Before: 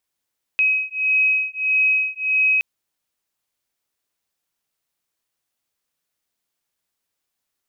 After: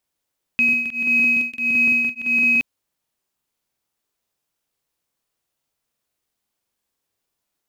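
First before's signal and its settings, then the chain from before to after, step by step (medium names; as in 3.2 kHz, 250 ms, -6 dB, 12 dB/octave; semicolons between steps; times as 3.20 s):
beating tones 2.54 kHz, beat 1.6 Hz, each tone -19.5 dBFS 2.02 s
in parallel at -12 dB: sample-rate reducer 2.3 kHz, jitter 0%; on the sum: crackling interface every 0.17 s, samples 2048, repeat, from 0.64 s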